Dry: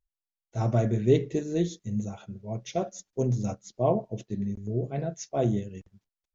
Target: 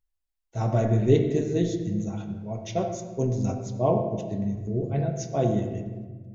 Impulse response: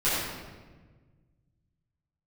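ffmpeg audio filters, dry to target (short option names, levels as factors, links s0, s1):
-filter_complex "[0:a]asplit=2[s0][s1];[1:a]atrim=start_sample=2205,highshelf=f=4900:g=-6.5[s2];[s1][s2]afir=irnorm=-1:irlink=0,volume=0.15[s3];[s0][s3]amix=inputs=2:normalize=0"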